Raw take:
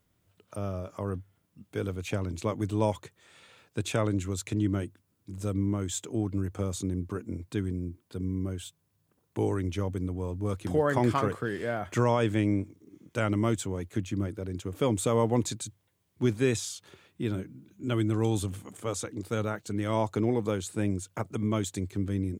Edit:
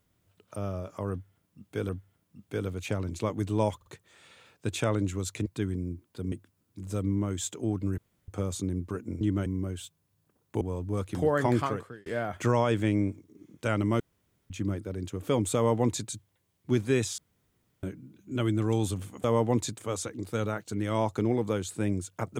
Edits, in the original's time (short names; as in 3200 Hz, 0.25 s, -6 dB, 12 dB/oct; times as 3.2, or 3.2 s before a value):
1.11–1.89 loop, 2 plays
2.98 stutter 0.05 s, 3 plays
4.58–4.83 swap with 7.42–8.28
6.49 insert room tone 0.30 s
9.43–10.13 cut
11.05–11.58 fade out
13.52–14.02 room tone
15.07–15.61 copy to 18.76
16.7–17.35 room tone